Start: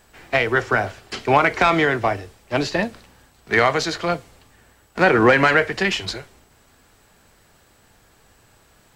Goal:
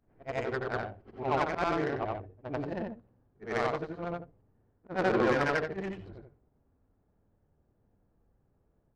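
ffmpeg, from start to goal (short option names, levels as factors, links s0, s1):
-af "afftfilt=real='re':imag='-im':win_size=8192:overlap=0.75,adynamicsmooth=sensitivity=0.5:basefreq=530,volume=0.473"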